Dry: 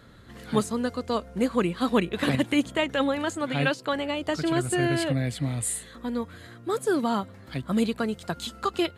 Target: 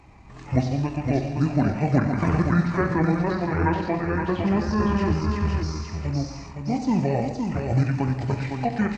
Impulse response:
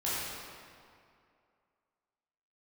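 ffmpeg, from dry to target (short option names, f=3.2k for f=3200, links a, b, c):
-filter_complex "[0:a]aecho=1:1:515|1030|1545:0.531|0.101|0.0192,asplit=2[a][b];[1:a]atrim=start_sample=2205,afade=t=out:st=0.28:d=0.01,atrim=end_sample=12789[c];[b][c]afir=irnorm=-1:irlink=0,volume=-9dB[d];[a][d]amix=inputs=2:normalize=0,acrossover=split=3200[e][f];[f]acompressor=threshold=-40dB:ratio=4:attack=1:release=60[g];[e][g]amix=inputs=2:normalize=0,asetrate=26222,aresample=44100,atempo=1.68179"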